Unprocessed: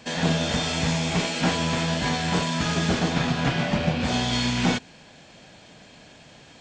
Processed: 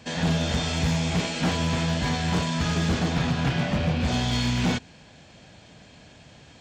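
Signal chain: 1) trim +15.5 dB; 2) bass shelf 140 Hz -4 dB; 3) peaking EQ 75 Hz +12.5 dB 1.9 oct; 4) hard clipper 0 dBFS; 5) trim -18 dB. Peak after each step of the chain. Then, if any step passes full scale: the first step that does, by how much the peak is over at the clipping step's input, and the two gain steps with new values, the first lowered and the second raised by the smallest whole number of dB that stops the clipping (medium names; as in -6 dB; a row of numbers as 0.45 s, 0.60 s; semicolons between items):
+4.5 dBFS, +4.5 dBFS, +7.5 dBFS, 0.0 dBFS, -18.0 dBFS; step 1, 7.5 dB; step 1 +7.5 dB, step 5 -10 dB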